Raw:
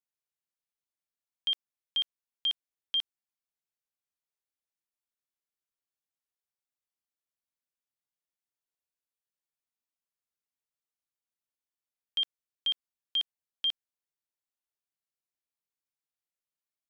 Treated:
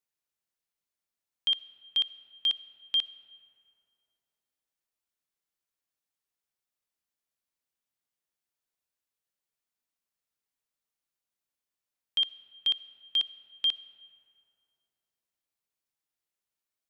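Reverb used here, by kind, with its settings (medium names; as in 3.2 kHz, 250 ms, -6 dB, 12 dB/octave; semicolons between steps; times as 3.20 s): algorithmic reverb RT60 3 s, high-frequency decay 0.45×, pre-delay 20 ms, DRR 16 dB; trim +3 dB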